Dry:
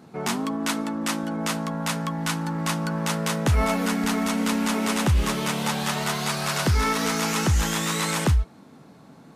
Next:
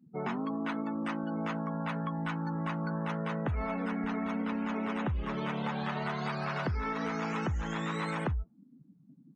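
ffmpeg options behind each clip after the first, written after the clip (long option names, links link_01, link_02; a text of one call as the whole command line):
ffmpeg -i in.wav -filter_complex "[0:a]acrossover=split=2600[link_01][link_02];[link_02]acompressor=threshold=-37dB:ratio=4:attack=1:release=60[link_03];[link_01][link_03]amix=inputs=2:normalize=0,afftdn=noise_reduction=36:noise_floor=-36,acompressor=threshold=-26dB:ratio=6,volume=-4dB" out.wav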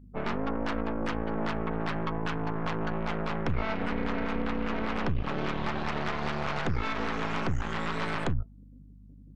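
ffmpeg -i in.wav -filter_complex "[0:a]acrossover=split=2900[link_01][link_02];[link_02]acompressor=threshold=-58dB:ratio=4:attack=1:release=60[link_03];[link_01][link_03]amix=inputs=2:normalize=0,aeval=exprs='0.0944*(cos(1*acos(clip(val(0)/0.0944,-1,1)))-cos(1*PI/2))+0.0299*(cos(6*acos(clip(val(0)/0.0944,-1,1)))-cos(6*PI/2))':channel_layout=same,aeval=exprs='val(0)+0.00316*(sin(2*PI*50*n/s)+sin(2*PI*2*50*n/s)/2+sin(2*PI*3*50*n/s)/3+sin(2*PI*4*50*n/s)/4+sin(2*PI*5*50*n/s)/5)':channel_layout=same" out.wav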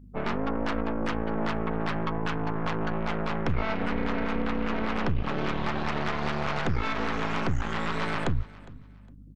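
ffmpeg -i in.wav -af "aecho=1:1:409|818:0.0891|0.0223,volume=2dB" out.wav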